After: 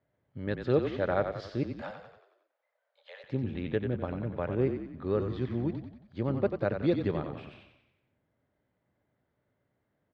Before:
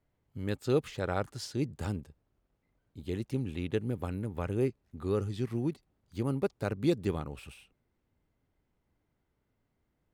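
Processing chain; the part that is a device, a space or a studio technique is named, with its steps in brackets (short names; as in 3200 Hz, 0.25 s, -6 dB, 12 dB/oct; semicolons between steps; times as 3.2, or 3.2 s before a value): 1.63–3.24 steep high-pass 510 Hz 96 dB/oct; frequency-shifting delay pedal into a guitar cabinet (frequency-shifting echo 91 ms, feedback 52%, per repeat -33 Hz, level -7 dB; speaker cabinet 96–3800 Hz, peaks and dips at 120 Hz +3 dB, 590 Hz +8 dB, 1700 Hz +5 dB, 2700 Hz -4 dB)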